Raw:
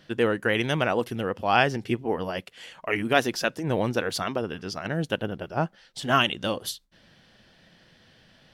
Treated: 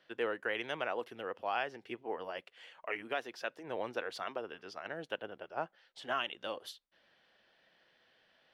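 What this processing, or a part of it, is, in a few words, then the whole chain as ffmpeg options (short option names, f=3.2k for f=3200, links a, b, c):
DJ mixer with the lows and highs turned down: -filter_complex "[0:a]acrossover=split=360 3900:gain=0.112 1 0.251[a][b][c];[a][b][c]amix=inputs=3:normalize=0,alimiter=limit=-13.5dB:level=0:latency=1:release=444,volume=-9dB"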